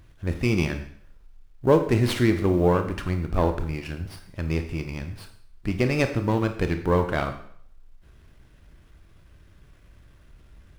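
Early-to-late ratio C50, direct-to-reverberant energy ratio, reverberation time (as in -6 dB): 9.0 dB, 6.5 dB, 0.60 s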